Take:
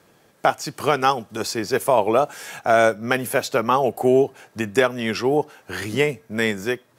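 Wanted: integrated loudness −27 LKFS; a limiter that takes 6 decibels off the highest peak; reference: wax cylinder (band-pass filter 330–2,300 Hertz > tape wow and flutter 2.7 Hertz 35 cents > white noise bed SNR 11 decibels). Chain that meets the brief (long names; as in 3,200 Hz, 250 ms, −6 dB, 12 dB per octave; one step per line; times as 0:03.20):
brickwall limiter −8.5 dBFS
band-pass filter 330–2,300 Hz
tape wow and flutter 2.7 Hz 35 cents
white noise bed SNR 11 dB
level −3 dB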